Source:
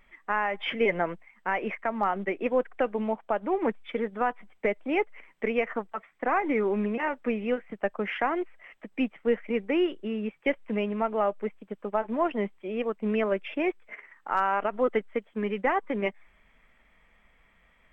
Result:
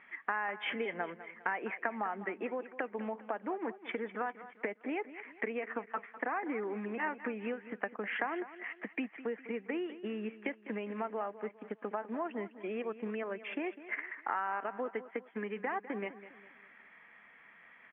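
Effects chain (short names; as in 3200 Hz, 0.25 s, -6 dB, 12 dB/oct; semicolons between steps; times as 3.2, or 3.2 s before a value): dynamic EQ 1900 Hz, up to -5 dB, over -39 dBFS, Q 0.86; compressor 6:1, threshold -36 dBFS, peak gain reduction 15 dB; speaker cabinet 270–2800 Hz, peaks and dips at 380 Hz -3 dB, 570 Hz -7 dB, 1700 Hz +7 dB; on a send: feedback echo 0.202 s, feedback 40%, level -14.5 dB; on the sum: gain +4.5 dB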